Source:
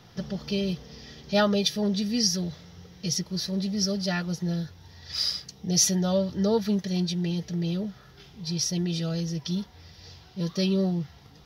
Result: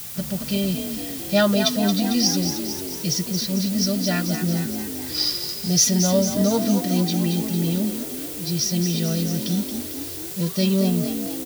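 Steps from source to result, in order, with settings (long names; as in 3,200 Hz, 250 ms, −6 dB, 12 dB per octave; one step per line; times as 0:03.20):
notch comb filter 430 Hz
background noise blue −40 dBFS
echo with shifted repeats 225 ms, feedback 61%, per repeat +44 Hz, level −8 dB
level +5 dB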